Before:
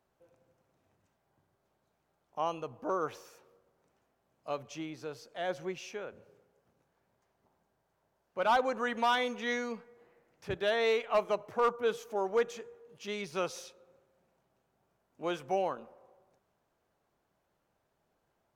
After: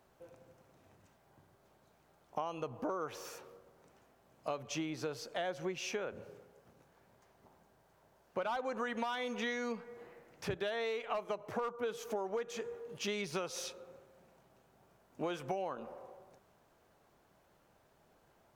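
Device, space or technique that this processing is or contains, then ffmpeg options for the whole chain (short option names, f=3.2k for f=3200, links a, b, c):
serial compression, leveller first: -af "acompressor=threshold=-32dB:ratio=2.5,acompressor=threshold=-44dB:ratio=6,volume=9dB"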